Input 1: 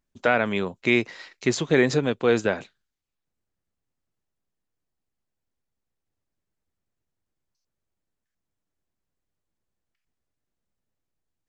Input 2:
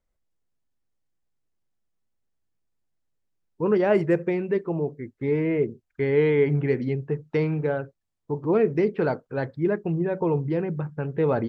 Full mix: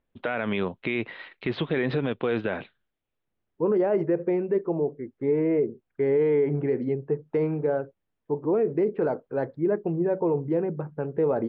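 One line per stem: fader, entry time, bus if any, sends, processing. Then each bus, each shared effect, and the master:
+1.5 dB, 0.00 s, no send, Butterworth low-pass 3,600 Hz 48 dB per octave
+2.5 dB, 0.00 s, no send, resonant band-pass 490 Hz, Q 0.73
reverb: not used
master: brickwall limiter −16 dBFS, peak gain reduction 11 dB

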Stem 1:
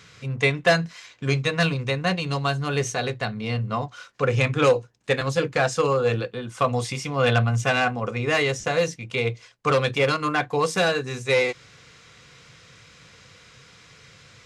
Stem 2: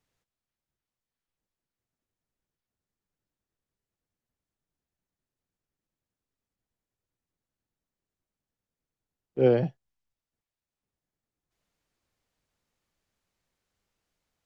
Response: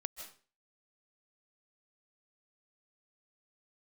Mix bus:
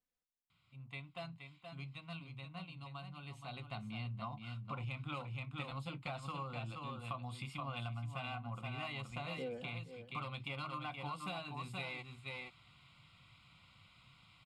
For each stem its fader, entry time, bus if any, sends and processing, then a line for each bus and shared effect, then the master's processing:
0:03.19 −22.5 dB → 0:03.84 −11 dB, 0.50 s, no send, echo send −7 dB, high-shelf EQ 7,900 Hz −4.5 dB; phaser with its sweep stopped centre 1,700 Hz, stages 6
−16.0 dB, 0.00 s, no send, echo send −18.5 dB, comb filter 4 ms, depth 74%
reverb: not used
echo: single-tap delay 474 ms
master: downward compressor 12 to 1, threshold −39 dBFS, peak gain reduction 11 dB

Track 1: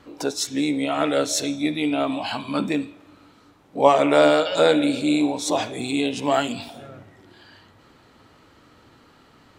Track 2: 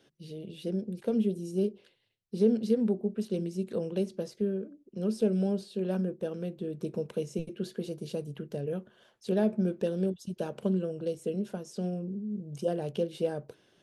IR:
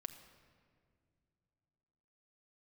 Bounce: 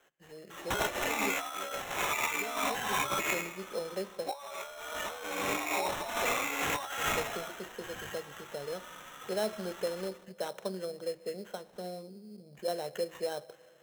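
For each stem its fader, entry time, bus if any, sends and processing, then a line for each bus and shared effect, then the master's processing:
+2.0 dB, 0.50 s, send −5.5 dB, echo send −4.5 dB, Chebyshev high-pass filter 1,100 Hz, order 2; barber-pole flanger 3.2 ms +0.78 Hz
−4.5 dB, 0.00 s, send −3.5 dB, no echo send, low-pass filter 5,100 Hz 24 dB per octave; three-way crossover with the lows and the highs turned down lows −21 dB, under 570 Hz, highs −22 dB, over 3,400 Hz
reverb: on, pre-delay 6 ms
echo: repeating echo 78 ms, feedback 43%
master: compressor whose output falls as the input rises −35 dBFS, ratio −1; sample-rate reduction 4,700 Hz, jitter 0%

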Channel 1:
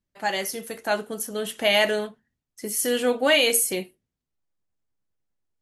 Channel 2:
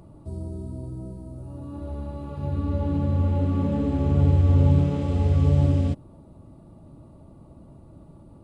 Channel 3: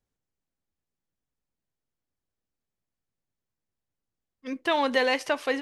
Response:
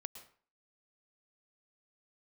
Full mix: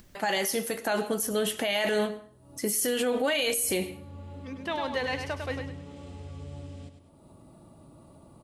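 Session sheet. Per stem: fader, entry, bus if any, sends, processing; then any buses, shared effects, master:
+2.0 dB, 0.00 s, send −5 dB, echo send −20.5 dB, no processing
−16.5 dB, 0.95 s, no send, echo send −11.5 dB, spectral tilt +2.5 dB per octave
−7.5 dB, 0.00 s, no send, echo send −6 dB, no processing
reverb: on, RT60 0.45 s, pre-delay 103 ms
echo: repeating echo 101 ms, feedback 28%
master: upward compression, threshold −37 dBFS; brickwall limiter −18.5 dBFS, peak gain reduction 15.5 dB

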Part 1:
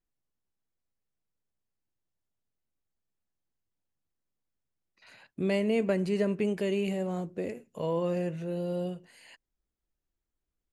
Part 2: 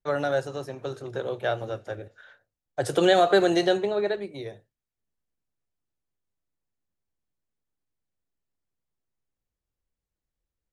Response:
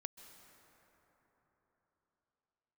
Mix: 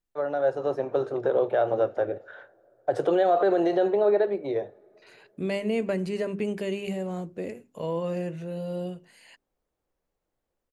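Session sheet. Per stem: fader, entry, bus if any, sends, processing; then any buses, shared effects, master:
+0.5 dB, 0.00 s, no send, mains-hum notches 50/100/150/200/250/300/350/400 Hz
−2.5 dB, 0.10 s, send −17.5 dB, automatic gain control gain up to 16 dB; brickwall limiter −10 dBFS, peak gain reduction 9 dB; resonant band-pass 580 Hz, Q 0.95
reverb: on, RT60 4.2 s, pre-delay 122 ms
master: no processing

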